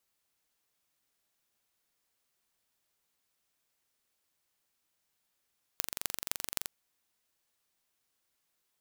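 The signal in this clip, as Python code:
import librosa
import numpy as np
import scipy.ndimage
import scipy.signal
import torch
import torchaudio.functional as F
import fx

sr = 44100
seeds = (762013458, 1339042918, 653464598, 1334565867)

y = fx.impulse_train(sr, length_s=0.88, per_s=23.3, accent_every=6, level_db=-2.5)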